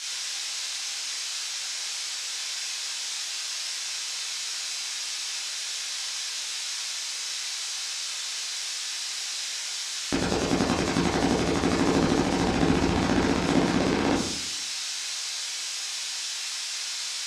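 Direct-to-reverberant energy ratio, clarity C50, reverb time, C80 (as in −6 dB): −7.0 dB, 2.5 dB, 0.75 s, 6.5 dB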